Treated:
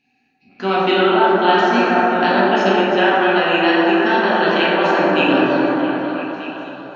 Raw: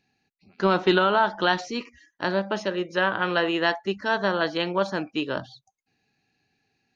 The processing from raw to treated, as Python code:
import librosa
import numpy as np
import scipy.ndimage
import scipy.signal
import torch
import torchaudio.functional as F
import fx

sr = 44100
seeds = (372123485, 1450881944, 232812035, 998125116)

p1 = fx.peak_eq(x, sr, hz=2600.0, db=11.0, octaves=0.73)
p2 = fx.rev_plate(p1, sr, seeds[0], rt60_s=4.2, hf_ratio=0.25, predelay_ms=0, drr_db=-8.0)
p3 = fx.rider(p2, sr, range_db=3, speed_s=0.5)
p4 = fx.low_shelf(p3, sr, hz=82.0, db=-5.5)
p5 = fx.small_body(p4, sr, hz=(260.0, 750.0), ring_ms=70, db=13)
p6 = p5 + fx.echo_stepped(p5, sr, ms=247, hz=410.0, octaves=0.7, feedback_pct=70, wet_db=-2.5, dry=0)
y = p6 * 10.0 ** (-3.0 / 20.0)